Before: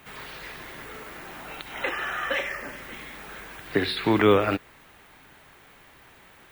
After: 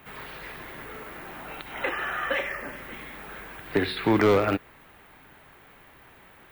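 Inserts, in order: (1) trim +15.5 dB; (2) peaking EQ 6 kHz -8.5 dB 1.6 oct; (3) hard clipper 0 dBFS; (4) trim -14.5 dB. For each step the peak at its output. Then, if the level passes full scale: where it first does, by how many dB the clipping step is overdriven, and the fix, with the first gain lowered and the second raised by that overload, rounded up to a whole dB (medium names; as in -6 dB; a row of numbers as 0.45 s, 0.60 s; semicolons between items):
+8.5 dBFS, +8.0 dBFS, 0.0 dBFS, -14.5 dBFS; step 1, 8.0 dB; step 1 +7.5 dB, step 4 -6.5 dB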